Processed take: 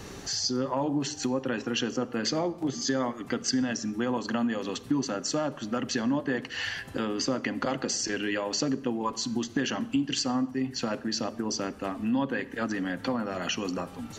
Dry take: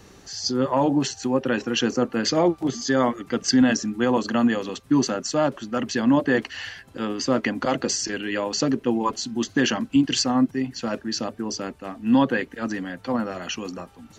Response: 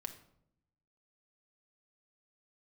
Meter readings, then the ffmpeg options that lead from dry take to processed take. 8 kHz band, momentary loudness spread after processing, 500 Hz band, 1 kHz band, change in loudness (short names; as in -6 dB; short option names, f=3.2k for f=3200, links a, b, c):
-3.5 dB, 4 LU, -7.0 dB, -6.5 dB, -6.5 dB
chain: -filter_complex "[0:a]acompressor=threshold=-35dB:ratio=4,asplit=2[a][b];[1:a]atrim=start_sample=2205,asetrate=29106,aresample=44100[c];[b][c]afir=irnorm=-1:irlink=0,volume=-4.5dB[d];[a][d]amix=inputs=2:normalize=0,volume=3dB"